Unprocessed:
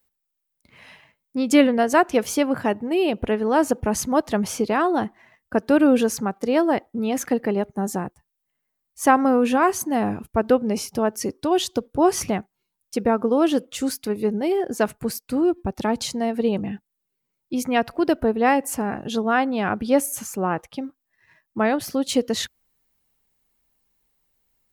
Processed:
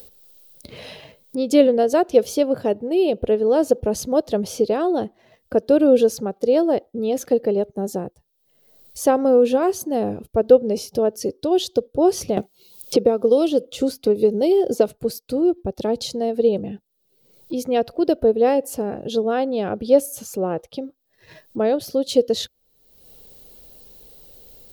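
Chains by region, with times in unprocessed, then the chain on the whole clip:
12.37–14.89 s: band-stop 1.7 kHz, Q 7.2 + three bands compressed up and down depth 100%
whole clip: ten-band graphic EQ 250 Hz -3 dB, 500 Hz +11 dB, 1 kHz -9 dB, 2 kHz -11 dB, 4 kHz +6 dB, 8 kHz -5 dB; upward compressor, threshold -24 dBFS; trim -1 dB

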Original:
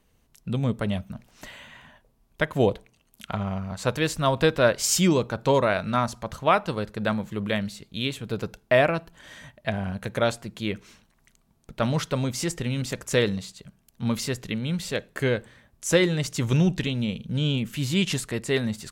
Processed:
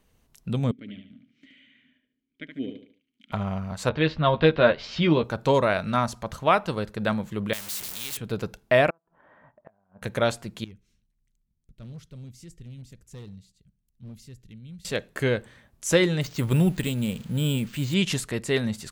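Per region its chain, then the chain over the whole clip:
0.71–3.32 s: vowel filter i + treble shelf 8.6 kHz -8.5 dB + feedback delay 73 ms, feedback 36%, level -6.5 dB
3.89–5.24 s: steep low-pass 4.1 kHz + doubling 13 ms -6 dB + tape noise reduction on one side only decoder only
7.53–8.17 s: jump at every zero crossing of -28 dBFS + pre-emphasis filter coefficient 0.9 + spectrum-flattening compressor 2:1
8.90–10.02 s: low-pass 1.1 kHz 24 dB/octave + tilt EQ +4.5 dB/octave + inverted gate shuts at -29 dBFS, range -32 dB
10.64–14.85 s: amplifier tone stack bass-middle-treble 10-0-1 + hard clipper -36.5 dBFS
16.21–17.94 s: zero-crossing glitches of -28.5 dBFS + low-pass 3.7 kHz 6 dB/octave + careless resampling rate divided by 4×, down filtered, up hold
whole clip: none

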